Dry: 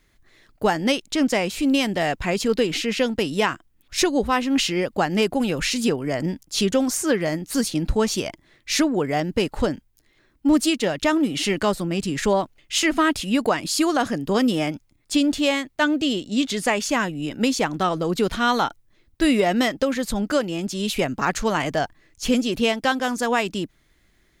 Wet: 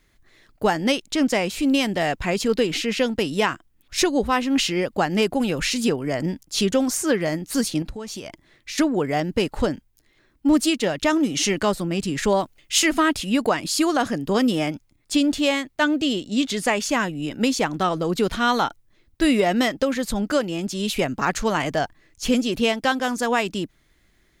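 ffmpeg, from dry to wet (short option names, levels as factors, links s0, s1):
-filter_complex "[0:a]asettb=1/sr,asplit=3[s0][s1][s2];[s0]atrim=end=7.824[s3];[s1]atrim=start=7.82:end=8.78,asetpts=PTS-STARTPTS,afade=t=in:d=0.004:c=qsin,afade=t=out:st=0.956:d=0.004:c=qsin,acompressor=threshold=0.0316:ratio=6:attack=3.2:release=140:knee=1:detection=peak[s4];[s2]atrim=start=8.776[s5];[s3][s4]acrossfade=d=0.004:c1=hsin:c2=qsin[s6];[s6][s5]acrossfade=d=0.004:c1=qsin:c2=hsin,asettb=1/sr,asplit=3[s7][s8][s9];[s7]atrim=end=11.104[s10];[s8]atrim=start=11.1:end=11.5,asetpts=PTS-STARTPTS,afade=t=in:d=0.004:c=qsin,afade=t=out:st=0.396:d=0.004:c=qsin,equalizer=f=6100:t=o:w=0.35:g=10.5[s11];[s9]atrim=start=11.496[s12];[s10][s11]acrossfade=d=0.004:c1=hsin:c2=qsin[s13];[s13][s12]acrossfade=d=0.004:c1=qsin:c2=hsin,asettb=1/sr,asplit=3[s14][s15][s16];[s14]atrim=end=12.324[s17];[s15]atrim=start=12.32:end=13,asetpts=PTS-STARTPTS,afade=t=in:d=0.004:c=qsin,afade=t=out:st=0.676:d=0.004:c=qsin,highshelf=f=5600:g=7.5[s18];[s16]atrim=start=12.996[s19];[s17][s18]acrossfade=d=0.004:c1=hsin:c2=qsin[s20];[s20][s19]acrossfade=d=0.004:c1=qsin:c2=hsin"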